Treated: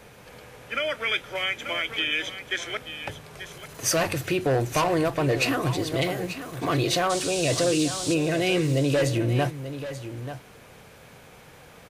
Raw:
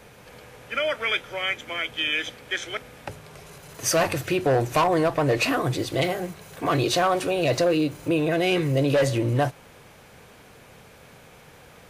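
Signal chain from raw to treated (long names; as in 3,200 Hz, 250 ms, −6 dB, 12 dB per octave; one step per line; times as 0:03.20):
0:07.09–0:08.13: noise in a band 3,100–9,200 Hz −33 dBFS
dynamic equaliser 820 Hz, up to −4 dB, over −31 dBFS, Q 0.7
on a send: single-tap delay 886 ms −11.5 dB
0:01.35–0:02.11: on the sum: multiband upward and downward compressor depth 70%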